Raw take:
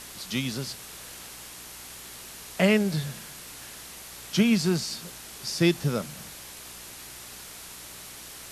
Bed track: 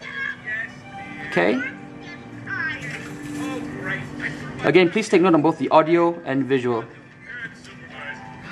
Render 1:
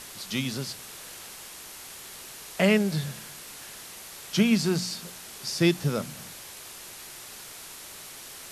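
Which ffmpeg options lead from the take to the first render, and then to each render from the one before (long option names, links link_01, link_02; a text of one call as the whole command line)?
ffmpeg -i in.wav -af "bandreject=frequency=60:width_type=h:width=4,bandreject=frequency=120:width_type=h:width=4,bandreject=frequency=180:width_type=h:width=4,bandreject=frequency=240:width_type=h:width=4,bandreject=frequency=300:width_type=h:width=4" out.wav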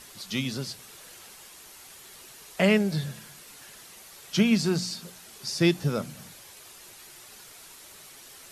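ffmpeg -i in.wav -af "afftdn=noise_reduction=7:noise_floor=-44" out.wav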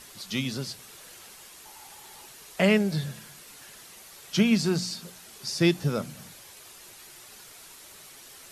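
ffmpeg -i in.wav -filter_complex "[0:a]asettb=1/sr,asplit=3[link_01][link_02][link_03];[link_01]atrim=end=1.654[link_04];[link_02]atrim=start=1.65:end=2.29,asetpts=PTS-STARTPTS,afade=type=in:duration=0.004:curve=qsin,afade=type=out:start_time=0.636:duration=0.004:curve=qsin,equalizer=frequency=850:width=5.4:gain=14.5[link_05];[link_03]atrim=start=2.286[link_06];[link_04][link_05]acrossfade=duration=0.004:curve1=hsin:curve2=qsin[link_07];[link_07][link_06]acrossfade=duration=0.004:curve1=qsin:curve2=hsin" out.wav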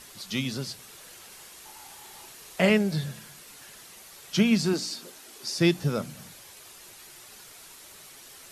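ffmpeg -i in.wav -filter_complex "[0:a]asettb=1/sr,asplit=3[link_01][link_02][link_03];[link_01]atrim=end=1.284[link_04];[link_02]atrim=start=1.28:end=2.7,asetpts=PTS-STARTPTS,afade=type=in:duration=0.004:curve=qsin,afade=type=out:start_time=1.416:duration=0.004:curve=qsin,asplit=2[link_05][link_06];[link_06]adelay=39,volume=-6.5dB[link_07];[link_05][link_07]amix=inputs=2:normalize=0,atrim=end_sample=62622[link_08];[link_03]atrim=start=2.696[link_09];[link_04][link_08]acrossfade=duration=0.004:curve1=hsin:curve2=qsin[link_10];[link_10][link_09]acrossfade=duration=0.004:curve1=qsin:curve2=hsin,asettb=1/sr,asplit=3[link_11][link_12][link_13];[link_11]atrim=end=4.734[link_14];[link_12]atrim=start=4.73:end=5.58,asetpts=PTS-STARTPTS,afade=type=in:duration=0.004:curve=qsin,afade=type=out:start_time=0.846:duration=0.004:curve=qsin,lowshelf=frequency=220:width_type=q:width=3:gain=-7[link_15];[link_13]atrim=start=5.576[link_16];[link_14][link_15]acrossfade=duration=0.004:curve1=hsin:curve2=qsin[link_17];[link_17][link_16]acrossfade=duration=0.004:curve1=qsin:curve2=hsin" out.wav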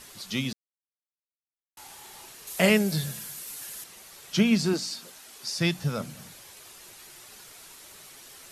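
ffmpeg -i in.wav -filter_complex "[0:a]asettb=1/sr,asplit=3[link_01][link_02][link_03];[link_01]atrim=end=2.474[link_04];[link_02]atrim=start=2.47:end=3.84,asetpts=PTS-STARTPTS,afade=type=in:duration=0.004:curve=qsin,afade=type=out:start_time=1.366:duration=0.004:curve=qsin,aemphasis=mode=production:type=50kf[link_05];[link_03]atrim=start=3.836[link_06];[link_04][link_05]acrossfade=duration=0.004:curve1=hsin:curve2=qsin[link_07];[link_07][link_06]acrossfade=duration=0.004:curve1=qsin:curve2=hsin,asettb=1/sr,asplit=3[link_08][link_09][link_10];[link_08]atrim=end=4.774[link_11];[link_09]atrim=start=4.77:end=6,asetpts=PTS-STARTPTS,afade=type=in:duration=0.004:curve=qsin,afade=type=out:start_time=1.226:duration=0.004:curve=qsin,equalizer=frequency=350:width=1.5:gain=-8.5[link_12];[link_10]atrim=start=5.996[link_13];[link_11][link_12]acrossfade=duration=0.004:curve1=hsin:curve2=qsin[link_14];[link_14][link_13]acrossfade=duration=0.004:curve1=qsin:curve2=hsin,asplit=3[link_15][link_16][link_17];[link_15]atrim=end=0.53,asetpts=PTS-STARTPTS,afade=type=out:start_time=0.526:duration=0.004:curve=hsin[link_18];[link_16]atrim=start=0.53:end=1.77,asetpts=PTS-STARTPTS,volume=0[link_19];[link_17]atrim=start=1.77,asetpts=PTS-STARTPTS,afade=type=in:duration=0.004:curve=hsin[link_20];[link_18][link_19][link_20]concat=n=3:v=0:a=1" out.wav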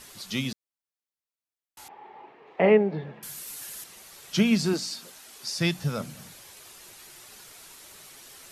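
ffmpeg -i in.wav -filter_complex "[0:a]asettb=1/sr,asplit=3[link_01][link_02][link_03];[link_01]atrim=end=1.884[link_04];[link_02]atrim=start=1.88:end=3.23,asetpts=PTS-STARTPTS,afade=type=in:duration=0.004:curve=qsin,afade=type=out:start_time=1.346:duration=0.004:curve=qsin,highpass=200,equalizer=frequency=300:width_type=q:width=4:gain=4,equalizer=frequency=440:width_type=q:width=4:gain=8,equalizer=frequency=830:width_type=q:width=4:gain=8,equalizer=frequency=1500:width_type=q:width=4:gain=-8,lowpass=frequency=2100:width=0.5412,lowpass=frequency=2100:width=1.3066[link_05];[link_03]atrim=start=3.226[link_06];[link_04][link_05]acrossfade=duration=0.004:curve1=hsin:curve2=qsin[link_07];[link_07][link_06]acrossfade=duration=0.004:curve1=qsin:curve2=hsin" out.wav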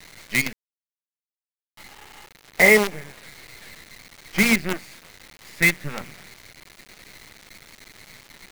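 ffmpeg -i in.wav -af "lowpass=frequency=2100:width_type=q:width=9.6,acrusher=bits=4:dc=4:mix=0:aa=0.000001" out.wav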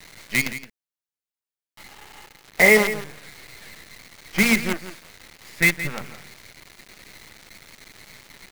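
ffmpeg -i in.wav -af "aecho=1:1:169:0.237" out.wav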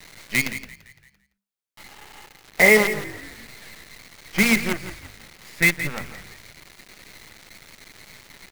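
ffmpeg -i in.wav -filter_complex "[0:a]asplit=5[link_01][link_02][link_03][link_04][link_05];[link_02]adelay=170,afreqshift=-50,volume=-18dB[link_06];[link_03]adelay=340,afreqshift=-100,volume=-23.7dB[link_07];[link_04]adelay=510,afreqshift=-150,volume=-29.4dB[link_08];[link_05]adelay=680,afreqshift=-200,volume=-35dB[link_09];[link_01][link_06][link_07][link_08][link_09]amix=inputs=5:normalize=0" out.wav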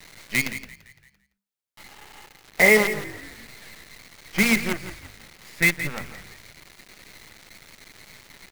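ffmpeg -i in.wav -af "volume=-1.5dB" out.wav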